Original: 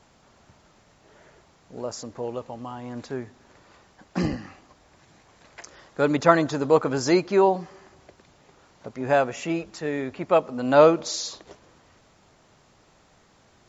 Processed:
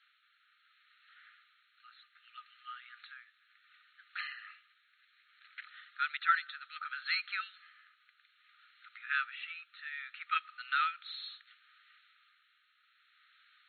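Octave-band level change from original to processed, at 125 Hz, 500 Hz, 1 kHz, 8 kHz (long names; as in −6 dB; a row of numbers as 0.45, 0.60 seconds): below −40 dB, below −40 dB, −11.0 dB, can't be measured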